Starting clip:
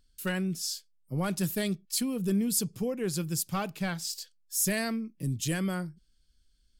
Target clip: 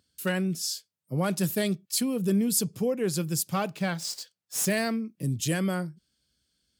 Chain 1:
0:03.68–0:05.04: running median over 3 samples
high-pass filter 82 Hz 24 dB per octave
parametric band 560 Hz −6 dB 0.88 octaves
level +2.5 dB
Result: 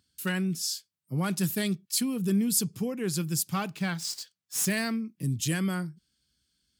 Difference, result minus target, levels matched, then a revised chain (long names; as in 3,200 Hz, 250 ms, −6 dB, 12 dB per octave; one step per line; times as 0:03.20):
500 Hz band −5.0 dB
0:03.68–0:05.04: running median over 3 samples
high-pass filter 82 Hz 24 dB per octave
parametric band 560 Hz +3.5 dB 0.88 octaves
level +2.5 dB